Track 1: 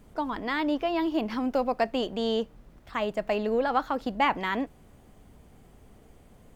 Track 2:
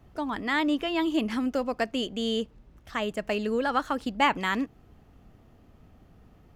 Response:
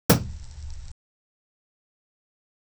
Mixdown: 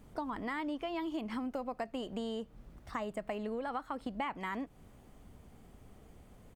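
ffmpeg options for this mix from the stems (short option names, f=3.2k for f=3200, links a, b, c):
-filter_complex "[0:a]volume=-3.5dB[a];[1:a]equalizer=f=8.6k:w=6.9:g=14,aecho=1:1:0.9:0.65,volume=-11.5dB[b];[a][b]amix=inputs=2:normalize=0,acompressor=threshold=-35dB:ratio=6"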